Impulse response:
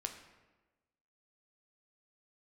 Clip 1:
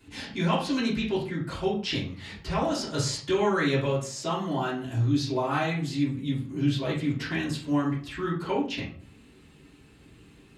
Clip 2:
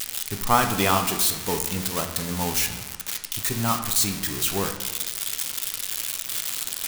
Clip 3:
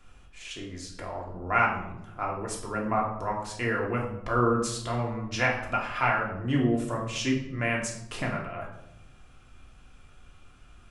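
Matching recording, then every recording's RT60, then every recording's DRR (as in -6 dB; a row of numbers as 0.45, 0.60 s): 2; 0.40, 1.2, 0.80 s; -9.5, 4.5, -2.0 dB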